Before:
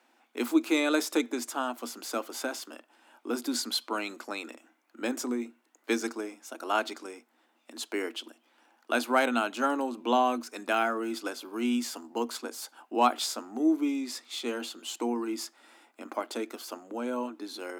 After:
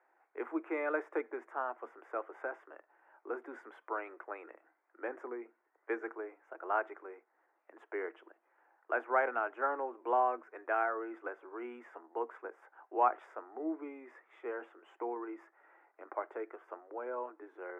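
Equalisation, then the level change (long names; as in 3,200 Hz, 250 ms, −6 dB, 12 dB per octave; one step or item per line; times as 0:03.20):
elliptic band-pass filter 380–1,900 Hz, stop band 40 dB
−4.0 dB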